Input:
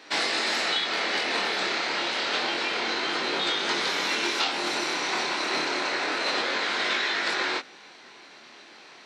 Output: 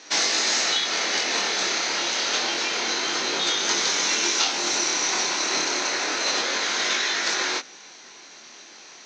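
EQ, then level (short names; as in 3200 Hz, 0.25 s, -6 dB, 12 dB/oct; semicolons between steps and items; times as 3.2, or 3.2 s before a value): synth low-pass 6300 Hz, resonance Q 7.8; 0.0 dB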